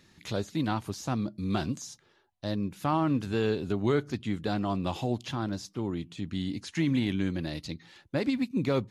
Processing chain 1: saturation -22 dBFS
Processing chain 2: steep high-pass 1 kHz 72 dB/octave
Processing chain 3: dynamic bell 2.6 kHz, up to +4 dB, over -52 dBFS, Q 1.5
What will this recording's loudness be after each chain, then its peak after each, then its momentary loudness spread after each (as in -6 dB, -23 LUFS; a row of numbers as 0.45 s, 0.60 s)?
-33.0 LUFS, -41.0 LUFS, -31.0 LUFS; -22.0 dBFS, -22.5 dBFS, -14.5 dBFS; 7 LU, 8 LU, 8 LU